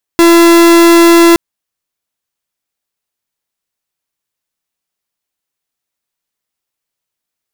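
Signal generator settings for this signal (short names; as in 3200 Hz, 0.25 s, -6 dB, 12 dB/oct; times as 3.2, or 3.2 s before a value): pulse 338 Hz, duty 44% -4.5 dBFS 1.17 s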